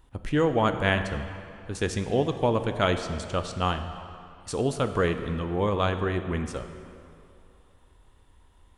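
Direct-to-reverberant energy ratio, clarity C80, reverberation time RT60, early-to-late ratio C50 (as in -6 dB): 7.5 dB, 9.5 dB, 2.7 s, 9.0 dB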